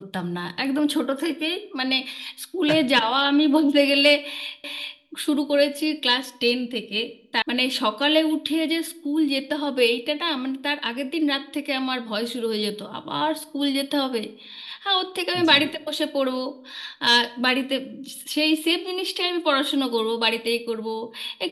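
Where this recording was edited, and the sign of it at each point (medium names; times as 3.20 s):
4.64 s: repeat of the last 0.38 s
7.42 s: sound stops dead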